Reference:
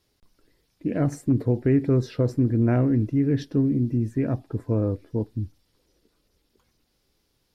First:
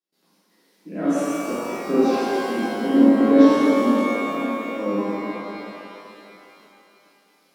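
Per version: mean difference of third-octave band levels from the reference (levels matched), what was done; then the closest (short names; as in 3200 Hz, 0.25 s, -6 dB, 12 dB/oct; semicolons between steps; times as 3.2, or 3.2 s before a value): 15.0 dB: Chebyshev high-pass 170 Hz, order 8; auto swell 0.314 s; step gate ".xx.xxxxxx." 122 bpm -24 dB; shimmer reverb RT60 2.9 s, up +12 st, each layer -8 dB, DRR -12 dB; gain -2 dB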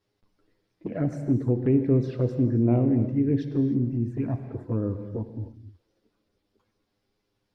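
3.5 dB: LPF 2100 Hz 6 dB/oct; low shelf 99 Hz -7 dB; envelope flanger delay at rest 9.9 ms, full sweep at -18 dBFS; non-linear reverb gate 0.33 s flat, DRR 8 dB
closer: second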